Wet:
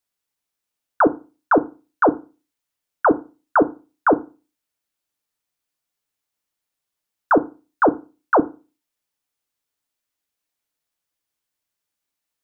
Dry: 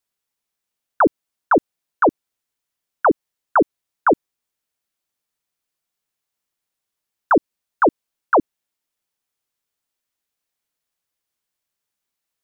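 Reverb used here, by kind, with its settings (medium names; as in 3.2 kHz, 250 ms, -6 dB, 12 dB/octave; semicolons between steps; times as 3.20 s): FDN reverb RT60 0.31 s, low-frequency decay 1.2×, high-frequency decay 0.85×, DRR 10.5 dB; trim -1 dB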